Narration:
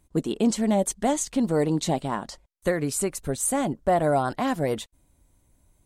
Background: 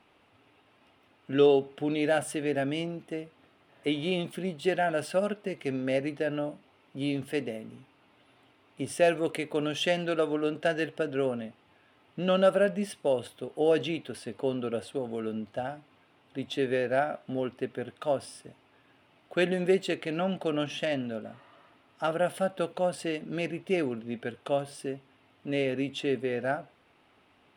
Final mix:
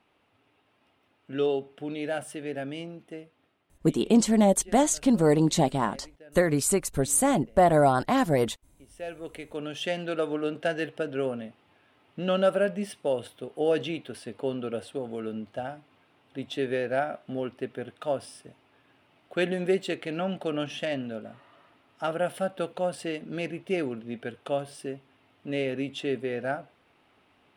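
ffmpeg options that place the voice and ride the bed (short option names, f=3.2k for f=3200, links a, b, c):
-filter_complex "[0:a]adelay=3700,volume=2dB[a];[1:a]volume=15.5dB,afade=t=out:st=3.15:d=0.82:silence=0.158489,afade=t=in:st=8.86:d=1.45:silence=0.0944061[b];[a][b]amix=inputs=2:normalize=0"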